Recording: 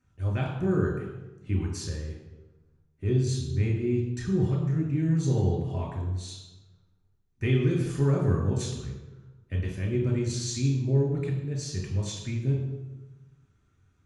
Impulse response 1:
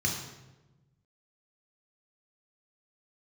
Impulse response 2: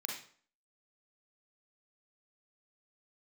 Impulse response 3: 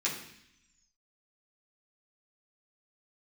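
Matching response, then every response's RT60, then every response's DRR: 1; 1.1, 0.50, 0.70 seconds; −1.5, −1.5, −7.0 decibels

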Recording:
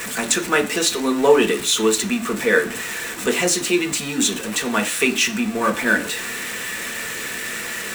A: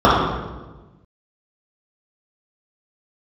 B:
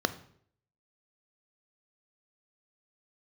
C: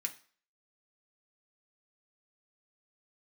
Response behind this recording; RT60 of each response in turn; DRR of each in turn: C; 1.2, 0.65, 0.45 seconds; −9.0, 11.5, 2.5 decibels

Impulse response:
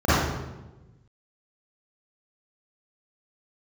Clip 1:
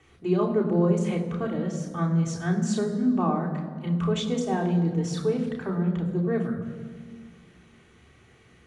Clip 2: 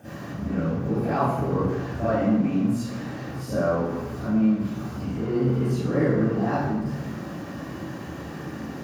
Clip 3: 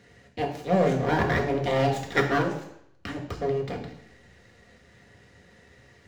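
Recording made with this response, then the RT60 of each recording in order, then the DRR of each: 2; 1.8, 1.1, 0.75 seconds; −2.0, −14.5, −0.5 decibels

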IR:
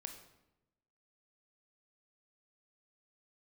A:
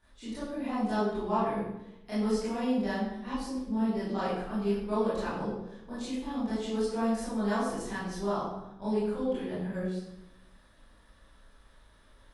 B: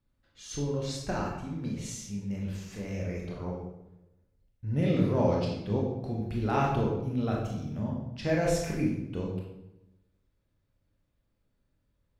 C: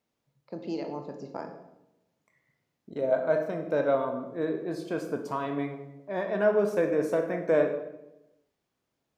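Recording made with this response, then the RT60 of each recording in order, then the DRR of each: C; 0.90, 0.90, 0.95 seconds; −12.5, −2.5, 5.0 decibels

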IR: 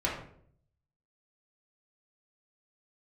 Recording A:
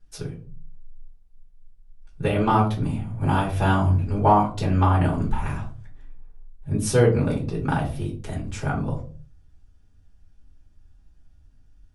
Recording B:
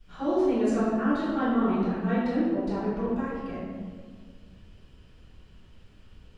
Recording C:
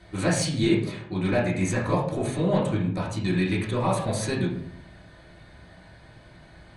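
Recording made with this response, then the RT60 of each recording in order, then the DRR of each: C; 0.40, 1.7, 0.60 seconds; −7.0, −18.5, −5.5 decibels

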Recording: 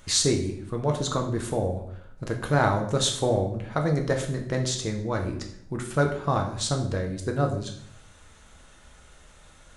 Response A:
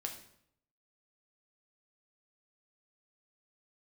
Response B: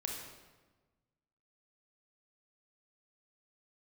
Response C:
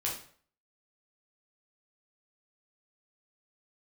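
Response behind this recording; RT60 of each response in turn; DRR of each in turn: A; 0.70, 1.3, 0.50 seconds; 2.5, 0.0, −4.0 decibels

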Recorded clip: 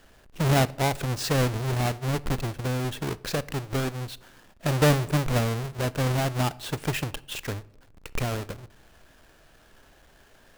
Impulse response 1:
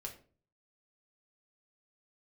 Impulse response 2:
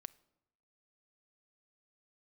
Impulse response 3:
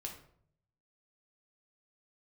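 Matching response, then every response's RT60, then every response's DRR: 2; 0.40, 0.85, 0.60 seconds; 0.0, 19.0, 0.0 decibels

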